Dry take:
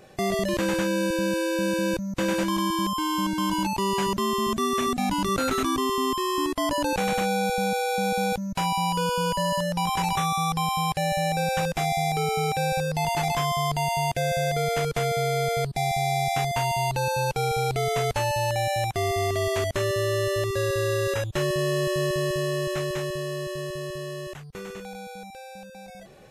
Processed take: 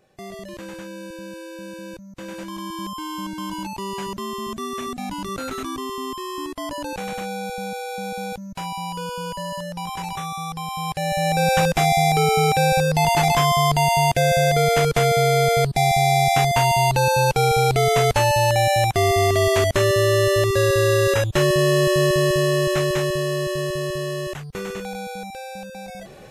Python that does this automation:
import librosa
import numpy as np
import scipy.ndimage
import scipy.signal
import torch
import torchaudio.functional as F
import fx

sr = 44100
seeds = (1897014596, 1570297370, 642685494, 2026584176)

y = fx.gain(x, sr, db=fx.line((2.16, -11.0), (2.88, -4.5), (10.64, -4.5), (11.5, 7.5)))